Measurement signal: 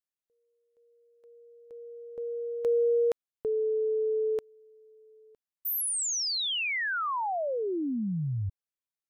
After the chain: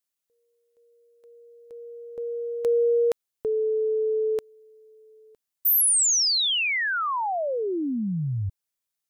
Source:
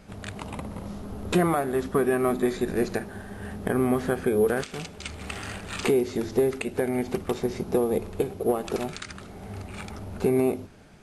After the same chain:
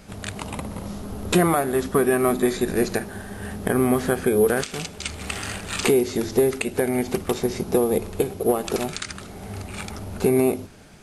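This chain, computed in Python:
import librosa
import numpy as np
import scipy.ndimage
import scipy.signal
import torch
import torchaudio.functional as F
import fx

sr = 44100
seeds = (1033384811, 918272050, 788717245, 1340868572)

y = fx.high_shelf(x, sr, hz=3900.0, db=7.5)
y = F.gain(torch.from_numpy(y), 3.5).numpy()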